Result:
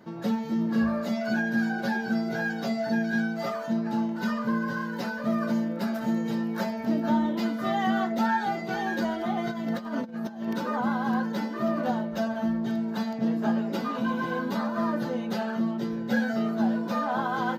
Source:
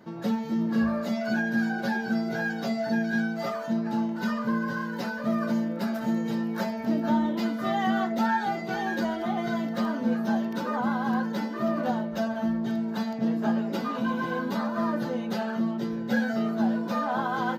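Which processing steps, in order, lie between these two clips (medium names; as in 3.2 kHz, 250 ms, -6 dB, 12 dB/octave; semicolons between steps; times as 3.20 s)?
9.50–10.54 s: compressor with a negative ratio -31 dBFS, ratio -0.5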